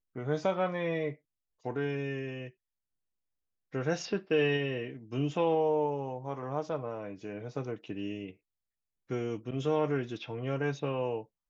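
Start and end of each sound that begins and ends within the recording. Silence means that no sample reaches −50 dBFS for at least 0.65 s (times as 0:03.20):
0:03.73–0:08.33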